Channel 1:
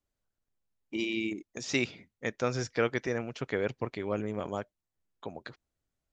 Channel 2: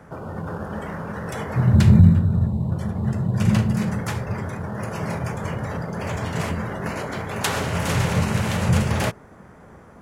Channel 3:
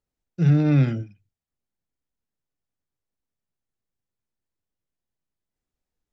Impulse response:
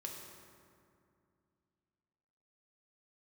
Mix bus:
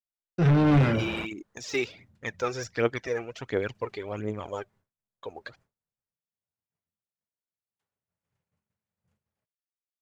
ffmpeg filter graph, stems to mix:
-filter_complex "[0:a]equalizer=frequency=170:width_type=o:width=0.77:gain=-7.5,deesser=0.9,aphaser=in_gain=1:out_gain=1:delay=2.7:decay=0.6:speed=1.4:type=triangular,volume=-0.5dB[link_01];[1:a]adynamicequalizer=threshold=0.0501:dfrequency=120:dqfactor=1.7:tfrequency=120:tqfactor=1.7:attack=5:release=100:ratio=0.375:range=2:mode=cutabove:tftype=bell,adelay=350,volume=-5.5dB[link_02];[2:a]flanger=delay=6.7:depth=1.3:regen=43:speed=1.2:shape=triangular,asplit=2[link_03][link_04];[link_04]highpass=frequency=720:poles=1,volume=29dB,asoftclip=type=tanh:threshold=-10.5dB[link_05];[link_03][link_05]amix=inputs=2:normalize=0,lowpass=frequency=1500:poles=1,volume=-6dB,volume=-2.5dB,asplit=2[link_06][link_07];[link_07]apad=whole_len=457185[link_08];[link_02][link_08]sidechaingate=range=-40dB:threshold=-53dB:ratio=16:detection=peak[link_09];[link_01][link_09][link_06]amix=inputs=3:normalize=0,agate=range=-33dB:threshold=-54dB:ratio=3:detection=peak"

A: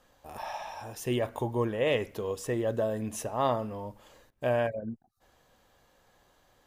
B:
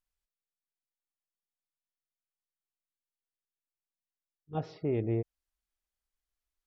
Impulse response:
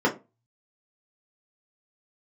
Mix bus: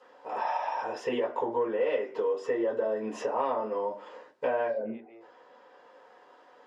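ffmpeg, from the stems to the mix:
-filter_complex "[0:a]asoftclip=type=tanh:threshold=-16dB,volume=-1dB,asplit=2[link_01][link_02];[link_02]volume=-3dB[link_03];[1:a]highpass=frequency=1100:poles=1,acompressor=mode=upward:threshold=-50dB:ratio=2.5,volume=-5.5dB,asplit=2[link_04][link_05];[link_05]volume=-18dB[link_06];[2:a]atrim=start_sample=2205[link_07];[link_03][link_06]amix=inputs=2:normalize=0[link_08];[link_08][link_07]afir=irnorm=-1:irlink=0[link_09];[link_01][link_04][link_09]amix=inputs=3:normalize=0,highpass=570,lowpass=4600,acompressor=threshold=-27dB:ratio=4"

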